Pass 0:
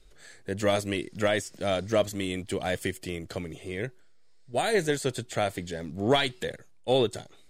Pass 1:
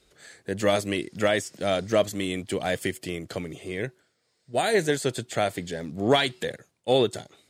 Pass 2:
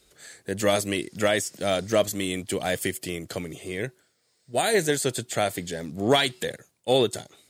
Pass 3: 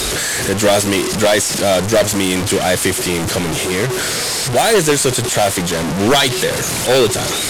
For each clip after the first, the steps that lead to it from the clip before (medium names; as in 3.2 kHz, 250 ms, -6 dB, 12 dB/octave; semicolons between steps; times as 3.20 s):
high-pass 100 Hz; trim +2.5 dB
treble shelf 7.1 kHz +11 dB
one-bit delta coder 64 kbps, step -25.5 dBFS; sine folder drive 9 dB, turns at -7 dBFS